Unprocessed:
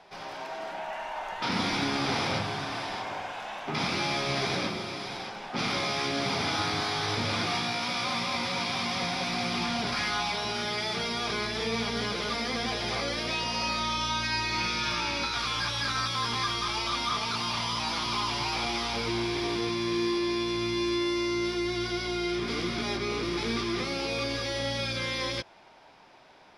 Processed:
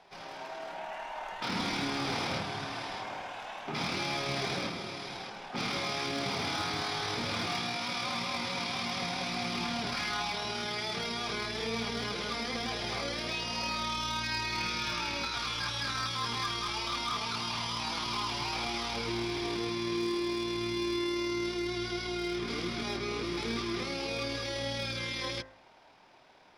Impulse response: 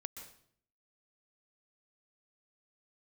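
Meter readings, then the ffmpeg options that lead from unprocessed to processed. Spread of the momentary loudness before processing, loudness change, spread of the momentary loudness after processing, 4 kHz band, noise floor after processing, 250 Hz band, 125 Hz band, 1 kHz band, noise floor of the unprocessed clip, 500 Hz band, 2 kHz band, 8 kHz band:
6 LU, -4.0 dB, 6 LU, -4.0 dB, -46 dBFS, -4.0 dB, -4.5 dB, -4.5 dB, -41 dBFS, -4.0 dB, -4.0 dB, -3.5 dB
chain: -af "tremolo=f=38:d=0.261,asoftclip=type=hard:threshold=0.0708,bandreject=f=52.58:t=h:w=4,bandreject=f=105.16:t=h:w=4,bandreject=f=157.74:t=h:w=4,bandreject=f=210.32:t=h:w=4,bandreject=f=262.9:t=h:w=4,bandreject=f=315.48:t=h:w=4,bandreject=f=368.06:t=h:w=4,bandreject=f=420.64:t=h:w=4,bandreject=f=473.22:t=h:w=4,bandreject=f=525.8:t=h:w=4,bandreject=f=578.38:t=h:w=4,bandreject=f=630.96:t=h:w=4,bandreject=f=683.54:t=h:w=4,bandreject=f=736.12:t=h:w=4,bandreject=f=788.7:t=h:w=4,bandreject=f=841.28:t=h:w=4,bandreject=f=893.86:t=h:w=4,bandreject=f=946.44:t=h:w=4,bandreject=f=999.02:t=h:w=4,bandreject=f=1051.6:t=h:w=4,bandreject=f=1104.18:t=h:w=4,bandreject=f=1156.76:t=h:w=4,bandreject=f=1209.34:t=h:w=4,bandreject=f=1261.92:t=h:w=4,bandreject=f=1314.5:t=h:w=4,bandreject=f=1367.08:t=h:w=4,bandreject=f=1419.66:t=h:w=4,bandreject=f=1472.24:t=h:w=4,bandreject=f=1524.82:t=h:w=4,bandreject=f=1577.4:t=h:w=4,bandreject=f=1629.98:t=h:w=4,bandreject=f=1682.56:t=h:w=4,bandreject=f=1735.14:t=h:w=4,bandreject=f=1787.72:t=h:w=4,bandreject=f=1840.3:t=h:w=4,bandreject=f=1892.88:t=h:w=4,bandreject=f=1945.46:t=h:w=4,bandreject=f=1998.04:t=h:w=4,bandreject=f=2050.62:t=h:w=4,volume=0.75"

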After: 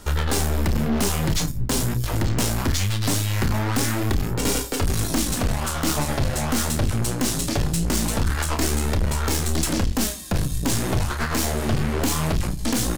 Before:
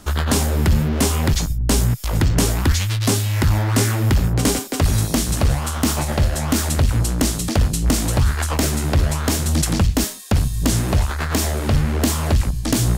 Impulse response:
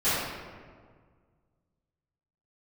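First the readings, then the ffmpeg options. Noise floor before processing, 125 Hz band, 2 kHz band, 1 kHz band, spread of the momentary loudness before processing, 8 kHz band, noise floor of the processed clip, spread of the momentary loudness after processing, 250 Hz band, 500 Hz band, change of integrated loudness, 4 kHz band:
-26 dBFS, -6.0 dB, -2.0 dB, -2.0 dB, 3 LU, -2.5 dB, -28 dBFS, 2 LU, -3.5 dB, -2.5 dB, -4.0 dB, -2.5 dB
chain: -filter_complex "[0:a]bandreject=f=60:t=h:w=6,bandreject=f=120:t=h:w=6,asplit=2[s0][s1];[s1]lowpass=3200[s2];[1:a]atrim=start_sample=2205[s3];[s2][s3]afir=irnorm=-1:irlink=0,volume=0.0133[s4];[s0][s4]amix=inputs=2:normalize=0,flanger=delay=2.1:depth=6.5:regen=38:speed=0.22:shape=sinusoidal,aeval=exprs='(tanh(17.8*val(0)+0.55)-tanh(0.55))/17.8':c=same,asplit=2[s5][s6];[s6]adelay=31,volume=0.335[s7];[s5][s7]amix=inputs=2:normalize=0,volume=2.11"

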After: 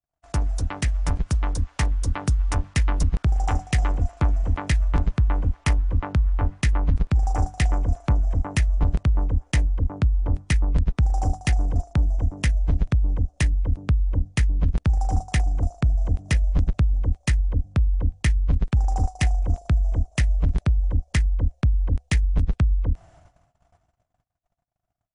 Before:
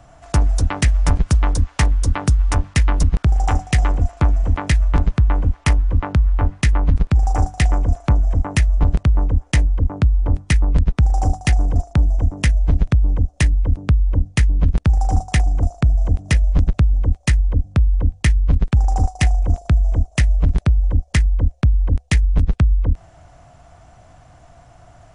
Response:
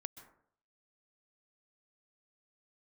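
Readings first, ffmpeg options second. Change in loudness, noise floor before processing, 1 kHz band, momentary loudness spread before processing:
-5.5 dB, -48 dBFS, -5.5 dB, 2 LU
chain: -af "dynaudnorm=f=430:g=9:m=1.58,agate=range=0.00708:threshold=0.00891:ratio=16:detection=peak,volume=0.398"

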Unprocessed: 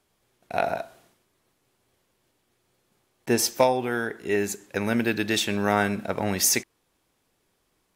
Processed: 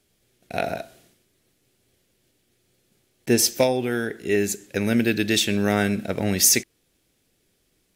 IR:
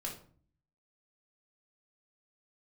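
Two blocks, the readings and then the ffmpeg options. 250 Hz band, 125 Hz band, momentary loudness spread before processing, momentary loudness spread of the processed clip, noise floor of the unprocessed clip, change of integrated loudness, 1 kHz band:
+4.0 dB, +5.0 dB, 8 LU, 12 LU, -72 dBFS, +3.0 dB, -4.0 dB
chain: -af "equalizer=f=1000:w=1.3:g=-13.5,volume=1.78"

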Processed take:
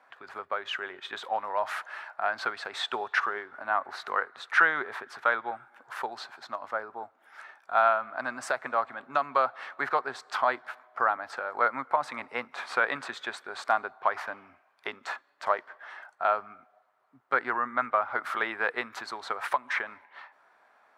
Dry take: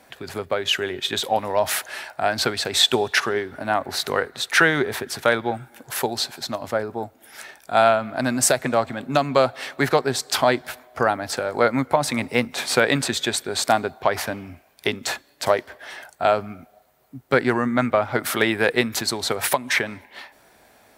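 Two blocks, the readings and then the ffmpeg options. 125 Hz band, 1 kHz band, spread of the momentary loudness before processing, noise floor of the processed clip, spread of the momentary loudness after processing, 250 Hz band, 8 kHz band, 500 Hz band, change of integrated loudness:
under -25 dB, -4.0 dB, 12 LU, -66 dBFS, 13 LU, -20.0 dB, -24.0 dB, -12.0 dB, -8.0 dB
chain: -af "bandpass=f=1200:t=q:w=2.4:csg=0"

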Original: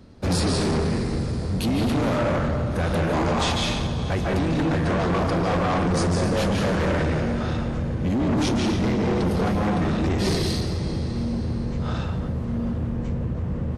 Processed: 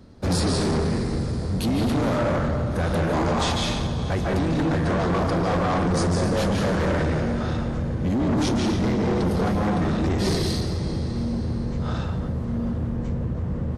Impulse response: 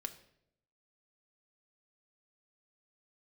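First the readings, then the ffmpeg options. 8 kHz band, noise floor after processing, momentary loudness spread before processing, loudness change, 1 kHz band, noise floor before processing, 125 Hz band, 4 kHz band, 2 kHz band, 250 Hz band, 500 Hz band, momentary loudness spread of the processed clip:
0.0 dB, -28 dBFS, 5 LU, 0.0 dB, 0.0 dB, -28 dBFS, 0.0 dB, -1.0 dB, -1.0 dB, 0.0 dB, 0.0 dB, 5 LU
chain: -af "equalizer=f=2600:w=2.3:g=-3.5"

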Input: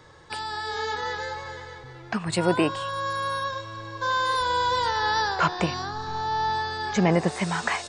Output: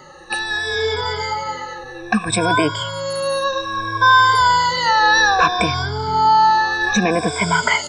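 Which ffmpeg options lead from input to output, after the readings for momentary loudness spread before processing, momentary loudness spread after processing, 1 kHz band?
12 LU, 11 LU, +10.5 dB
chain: -filter_complex "[0:a]afftfilt=real='re*pow(10,24/40*sin(2*PI*(1.7*log(max(b,1)*sr/1024/100)/log(2)-(-0.62)*(pts-256)/sr)))':imag='im*pow(10,24/40*sin(2*PI*(1.7*log(max(b,1)*sr/1024/100)/log(2)-(-0.62)*(pts-256)/sr)))':win_size=1024:overlap=0.75,acrossover=split=1300[s0][s1];[s0]alimiter=limit=0.188:level=0:latency=1:release=179[s2];[s2][s1]amix=inputs=2:normalize=0,volume=1.78"

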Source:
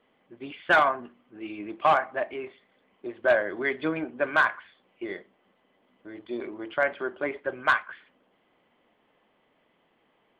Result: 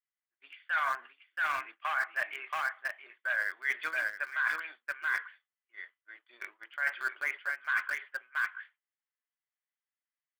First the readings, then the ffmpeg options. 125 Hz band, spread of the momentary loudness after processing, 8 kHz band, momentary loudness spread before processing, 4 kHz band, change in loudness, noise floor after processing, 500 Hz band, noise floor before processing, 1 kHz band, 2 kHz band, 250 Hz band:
under -25 dB, 15 LU, no reading, 19 LU, -6.5 dB, -6.5 dB, under -85 dBFS, -21.5 dB, -69 dBFS, -9.0 dB, -2.0 dB, under -25 dB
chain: -filter_complex "[0:a]highpass=f=1600:t=q:w=2.3,highshelf=f=3600:g=-3,aecho=1:1:678:0.422,asplit=2[s0][s1];[s1]aeval=exprs='val(0)*gte(abs(val(0)),0.0299)':c=same,volume=0.376[s2];[s0][s2]amix=inputs=2:normalize=0,agate=range=0.0224:threshold=0.00891:ratio=3:detection=peak,areverse,acompressor=threshold=0.0398:ratio=12,areverse"

